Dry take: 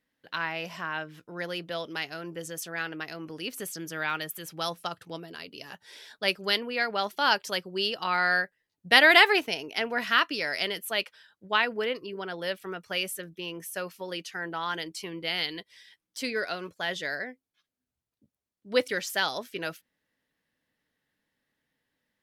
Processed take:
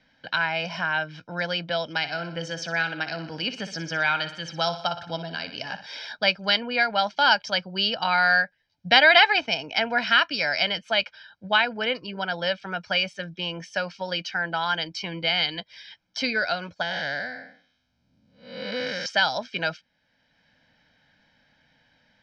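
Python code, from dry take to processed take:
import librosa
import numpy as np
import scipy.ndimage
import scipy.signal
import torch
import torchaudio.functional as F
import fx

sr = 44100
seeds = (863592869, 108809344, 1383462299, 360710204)

y = fx.echo_feedback(x, sr, ms=60, feedback_pct=50, wet_db=-12, at=(1.97, 5.86))
y = fx.spec_blur(y, sr, span_ms=306.0, at=(16.82, 19.06))
y = scipy.signal.sosfilt(scipy.signal.ellip(4, 1.0, 70, 5500.0, 'lowpass', fs=sr, output='sos'), y)
y = y + 0.75 * np.pad(y, (int(1.3 * sr / 1000.0), 0))[:len(y)]
y = fx.band_squash(y, sr, depth_pct=40)
y = y * librosa.db_to_amplitude(4.5)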